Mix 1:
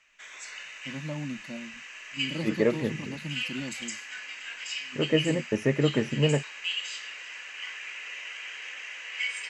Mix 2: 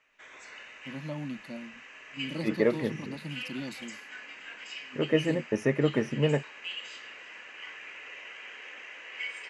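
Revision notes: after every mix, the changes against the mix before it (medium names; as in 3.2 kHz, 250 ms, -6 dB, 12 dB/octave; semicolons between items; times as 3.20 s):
background: add tilt EQ -4.5 dB/octave; master: add bass shelf 130 Hz -7 dB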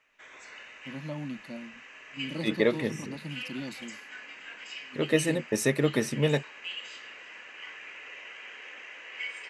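second voice: remove boxcar filter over 11 samples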